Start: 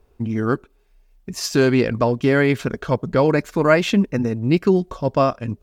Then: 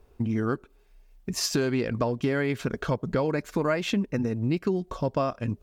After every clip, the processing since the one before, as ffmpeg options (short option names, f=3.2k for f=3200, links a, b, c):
-af "acompressor=threshold=-24dB:ratio=4"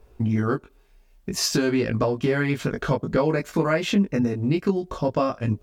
-af "flanger=delay=18.5:depth=2.1:speed=0.57,volume=7dB"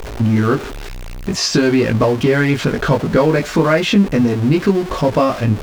-filter_complex "[0:a]aeval=exprs='val(0)+0.5*0.0355*sgn(val(0))':c=same,acrossover=split=6500[a][b];[b]acompressor=threshold=-49dB:ratio=4:attack=1:release=60[c];[a][c]amix=inputs=2:normalize=0,volume=7dB"